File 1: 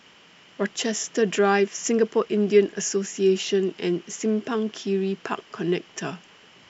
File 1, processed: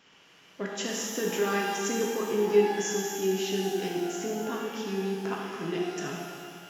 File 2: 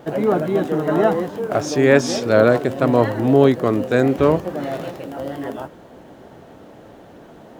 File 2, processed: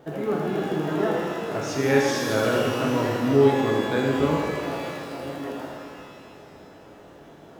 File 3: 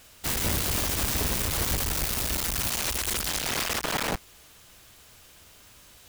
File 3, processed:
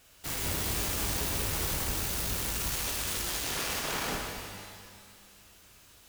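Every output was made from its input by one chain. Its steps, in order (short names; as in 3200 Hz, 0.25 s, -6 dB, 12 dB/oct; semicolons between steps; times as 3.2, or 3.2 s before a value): dynamic EQ 660 Hz, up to -6 dB, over -29 dBFS, Q 1.2; shimmer reverb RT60 2 s, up +12 st, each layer -8 dB, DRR -2 dB; gain -8.5 dB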